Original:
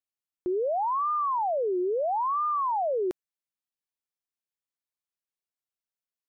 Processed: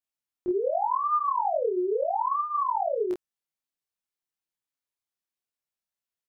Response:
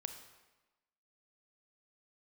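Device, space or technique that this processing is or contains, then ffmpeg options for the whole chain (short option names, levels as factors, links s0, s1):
double-tracked vocal: -filter_complex "[0:a]asplit=3[s0][s1][s2];[s0]afade=t=out:st=2.01:d=0.02[s3];[s1]lowshelf=f=180:t=q:w=3:g=12.5,afade=t=in:st=2.01:d=0.02,afade=t=out:st=2.96:d=0.02[s4];[s2]afade=t=in:st=2.96:d=0.02[s5];[s3][s4][s5]amix=inputs=3:normalize=0,asplit=2[s6][s7];[s7]adelay=28,volume=0.794[s8];[s6][s8]amix=inputs=2:normalize=0,flanger=delay=19:depth=2.8:speed=0.35,volume=1.19"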